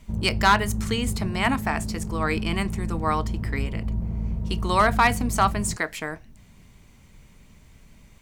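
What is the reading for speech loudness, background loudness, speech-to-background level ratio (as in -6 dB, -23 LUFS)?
-25.0 LUFS, -30.5 LUFS, 5.5 dB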